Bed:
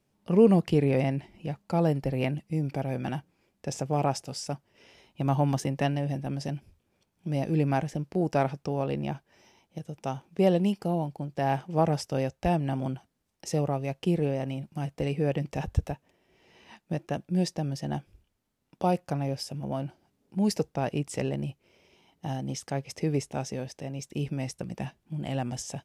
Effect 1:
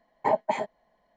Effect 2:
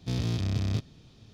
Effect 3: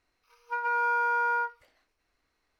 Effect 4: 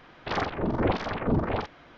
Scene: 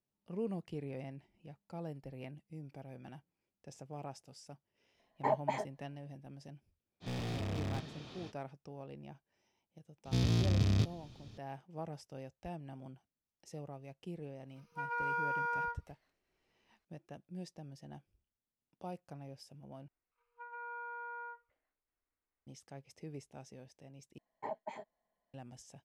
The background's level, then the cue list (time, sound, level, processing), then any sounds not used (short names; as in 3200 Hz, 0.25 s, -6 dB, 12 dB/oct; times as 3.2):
bed -19 dB
4.99 add 1 -8 dB
7 add 2 -13.5 dB, fades 0.05 s + overdrive pedal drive 35 dB, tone 1700 Hz, clips at -17 dBFS
10.05 add 2 -1 dB
14.26 add 3 -9 dB
19.88 replace with 3 -16 dB + air absorption 430 m
24.18 replace with 1 -17.5 dB
not used: 4